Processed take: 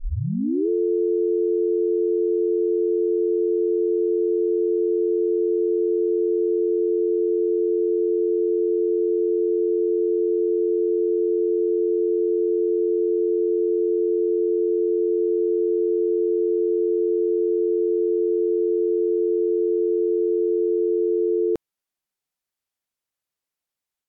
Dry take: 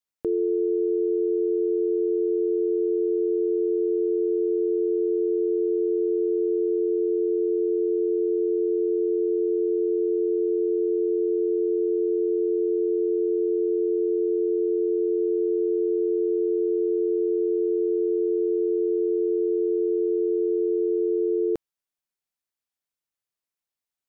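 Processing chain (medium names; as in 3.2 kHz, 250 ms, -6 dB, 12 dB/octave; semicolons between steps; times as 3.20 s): tape start-up on the opening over 0.69 s; level rider gain up to 4 dB; trim -1.5 dB; AAC 96 kbps 48 kHz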